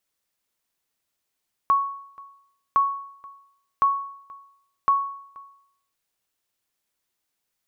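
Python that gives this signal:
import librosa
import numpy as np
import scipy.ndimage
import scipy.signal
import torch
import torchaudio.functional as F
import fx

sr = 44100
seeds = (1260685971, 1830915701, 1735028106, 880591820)

y = fx.sonar_ping(sr, hz=1110.0, decay_s=0.69, every_s=1.06, pings=4, echo_s=0.48, echo_db=-24.0, level_db=-12.5)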